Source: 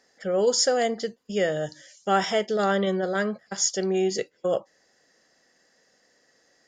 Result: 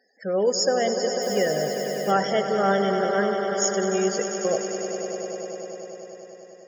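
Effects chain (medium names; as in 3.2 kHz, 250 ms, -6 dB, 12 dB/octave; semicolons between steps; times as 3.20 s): loudest bins only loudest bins 32; echo with a slow build-up 99 ms, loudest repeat 5, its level -11 dB; 1.21–2.10 s: added noise blue -47 dBFS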